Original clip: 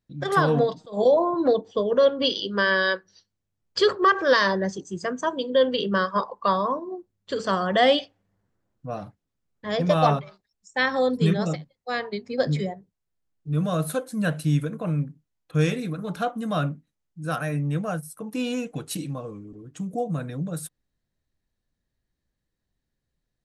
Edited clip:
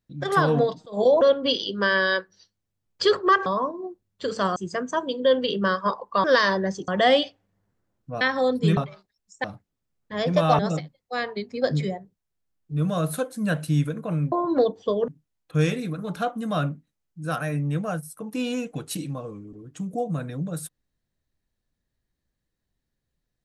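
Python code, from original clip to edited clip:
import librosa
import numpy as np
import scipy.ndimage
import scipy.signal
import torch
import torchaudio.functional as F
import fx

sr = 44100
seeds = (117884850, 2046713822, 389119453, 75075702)

y = fx.edit(x, sr, fx.move(start_s=1.21, length_s=0.76, to_s=15.08),
    fx.swap(start_s=4.22, length_s=0.64, other_s=6.54, other_length_s=1.1),
    fx.swap(start_s=8.97, length_s=1.15, other_s=10.79, other_length_s=0.56), tone=tone)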